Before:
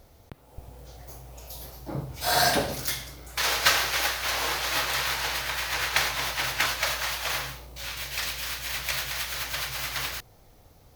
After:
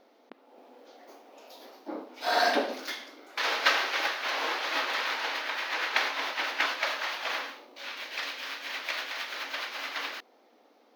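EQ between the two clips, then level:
linear-phase brick-wall high-pass 220 Hz
high-frequency loss of the air 280 metres
high-shelf EQ 5,700 Hz +11.5 dB
0.0 dB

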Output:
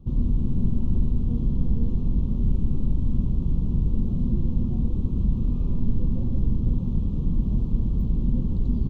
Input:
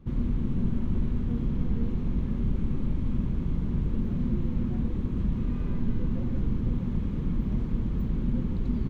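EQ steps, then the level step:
Butterworth band-reject 1,800 Hz, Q 0.94
low-shelf EQ 180 Hz +8.5 dB
−2.0 dB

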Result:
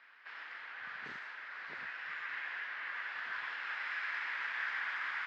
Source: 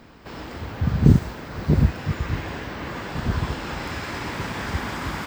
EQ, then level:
four-pole ladder band-pass 2,000 Hz, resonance 50%
high-frequency loss of the air 110 metres
+5.0 dB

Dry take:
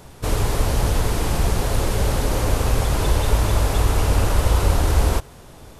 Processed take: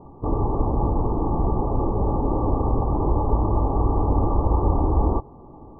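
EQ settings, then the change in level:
Chebyshev low-pass with heavy ripple 1,200 Hz, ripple 9 dB
+5.5 dB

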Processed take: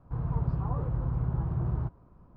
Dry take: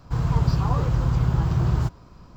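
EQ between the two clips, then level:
low-pass filter 1,100 Hz 12 dB per octave
−8.5 dB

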